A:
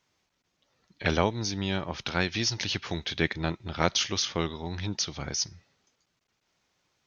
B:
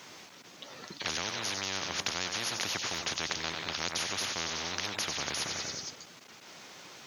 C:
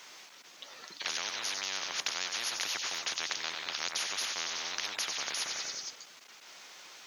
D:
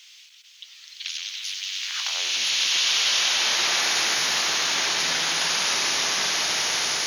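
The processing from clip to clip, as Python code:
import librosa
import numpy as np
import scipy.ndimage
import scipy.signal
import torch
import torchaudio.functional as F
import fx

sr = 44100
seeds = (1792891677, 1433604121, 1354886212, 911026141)

y1 = scipy.signal.sosfilt(scipy.signal.butter(2, 180.0, 'highpass', fs=sr, output='sos'), x)
y1 = fx.echo_feedback(y1, sr, ms=93, feedback_pct=57, wet_db=-16.5)
y1 = fx.spectral_comp(y1, sr, ratio=10.0)
y1 = y1 * 10.0 ** (-7.5 / 20.0)
y2 = fx.highpass(y1, sr, hz=1000.0, slope=6)
y3 = fx.filter_sweep_highpass(y2, sr, from_hz=3000.0, to_hz=120.0, start_s=1.78, end_s=2.54, q=2.1)
y3 = fx.rev_bloom(y3, sr, seeds[0], attack_ms=1730, drr_db=-12.0)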